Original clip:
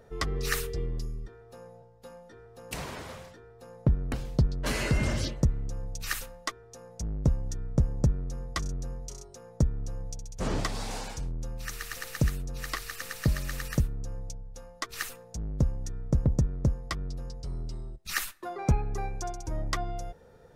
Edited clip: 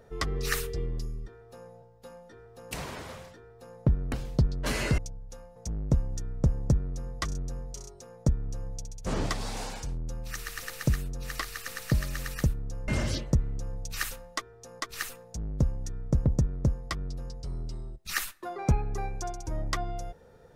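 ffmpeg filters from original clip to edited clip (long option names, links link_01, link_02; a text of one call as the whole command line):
ffmpeg -i in.wav -filter_complex "[0:a]asplit=5[link_01][link_02][link_03][link_04][link_05];[link_01]atrim=end=4.982[link_06];[link_02]atrim=start=14.218:end=14.802[link_07];[link_03]atrim=start=6.898:end=14.222[link_08];[link_04]atrim=start=4.978:end=6.902[link_09];[link_05]atrim=start=14.798[link_10];[link_06][link_07]acrossfade=duration=0.004:curve1=hsin:curve2=hsin[link_11];[link_11][link_08]acrossfade=duration=0.004:curve1=hsin:curve2=hsin[link_12];[link_12][link_09]acrossfade=duration=0.004:curve1=hsin:curve2=hsin[link_13];[link_13][link_10]acrossfade=duration=0.004:curve1=hsin:curve2=hsin" out.wav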